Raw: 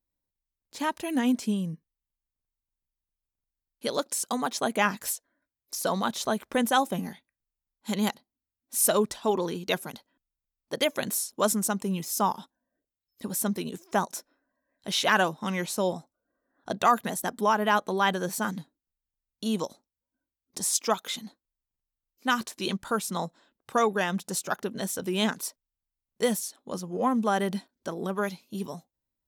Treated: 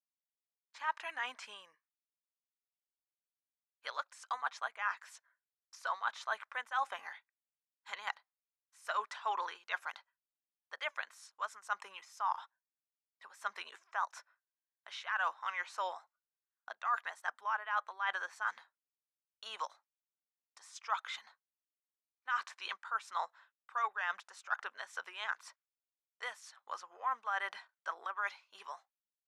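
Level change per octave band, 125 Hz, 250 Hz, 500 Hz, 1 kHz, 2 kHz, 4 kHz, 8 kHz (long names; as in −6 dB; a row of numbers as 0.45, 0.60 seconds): below −40 dB, below −40 dB, −22.0 dB, −8.5 dB, −5.5 dB, −14.0 dB, −25.0 dB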